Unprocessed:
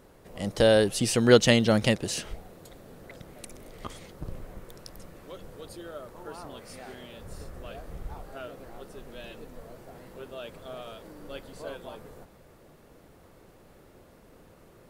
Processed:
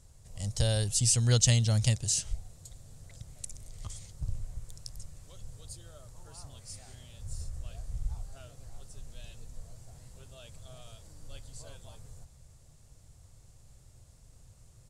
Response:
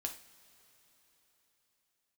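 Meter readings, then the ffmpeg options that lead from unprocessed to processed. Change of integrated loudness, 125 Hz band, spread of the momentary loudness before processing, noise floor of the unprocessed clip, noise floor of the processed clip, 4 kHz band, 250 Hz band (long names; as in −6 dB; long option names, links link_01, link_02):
−6.5 dB, +4.0 dB, 23 LU, −56 dBFS, −57 dBFS, −4.0 dB, −13.0 dB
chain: -af "firequalizer=gain_entry='entry(120,0);entry(180,-16);entry(340,-25);entry(680,-18);entry(1400,-20);entry(4900,-4);entry(7400,4);entry(15000,-19)':delay=0.05:min_phase=1,volume=5dB"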